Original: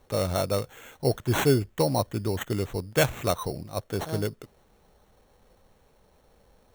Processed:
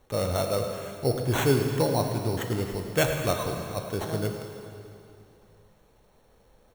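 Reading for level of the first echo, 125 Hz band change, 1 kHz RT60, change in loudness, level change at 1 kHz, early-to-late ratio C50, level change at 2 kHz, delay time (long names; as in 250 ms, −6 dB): −13.5 dB, 0.0 dB, 2.7 s, 0.0 dB, 0.0 dB, 4.5 dB, 0.0 dB, 107 ms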